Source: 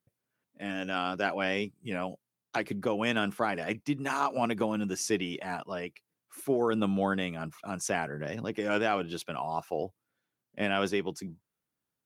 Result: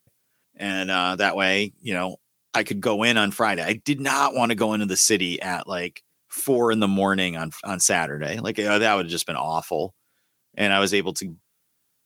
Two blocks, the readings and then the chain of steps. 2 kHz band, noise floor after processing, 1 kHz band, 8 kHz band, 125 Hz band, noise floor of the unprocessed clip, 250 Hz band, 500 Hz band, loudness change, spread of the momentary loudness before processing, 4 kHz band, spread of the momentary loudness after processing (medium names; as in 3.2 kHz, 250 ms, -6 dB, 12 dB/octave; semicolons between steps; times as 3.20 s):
+11.0 dB, -72 dBFS, +8.5 dB, +16.5 dB, +7.0 dB, under -85 dBFS, +7.0 dB, +7.5 dB, +9.5 dB, 10 LU, +14.0 dB, 11 LU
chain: treble shelf 2.6 kHz +11 dB; trim +7 dB